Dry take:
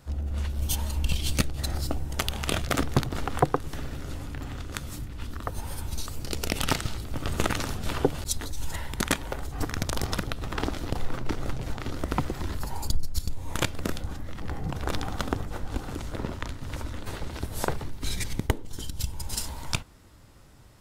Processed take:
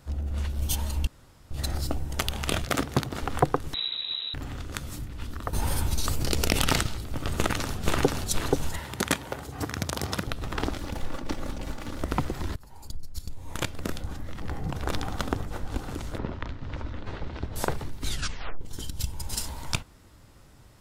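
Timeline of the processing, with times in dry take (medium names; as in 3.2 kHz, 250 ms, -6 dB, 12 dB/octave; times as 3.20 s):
1.07–1.51 s: room tone
2.64–3.23 s: high-pass 110 Hz 6 dB/octave
3.74–4.34 s: frequency inversion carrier 3.9 kHz
5.53–6.83 s: level flattener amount 70%
7.36–8.21 s: echo throw 480 ms, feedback 25%, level -1.5 dB
8.79–10.27 s: high-pass 76 Hz 24 dB/octave
10.78–12.01 s: comb filter that takes the minimum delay 3.5 ms
12.56–14.22 s: fade in linear, from -21.5 dB
16.18–17.56 s: distance through air 190 m
18.07 s: tape stop 0.54 s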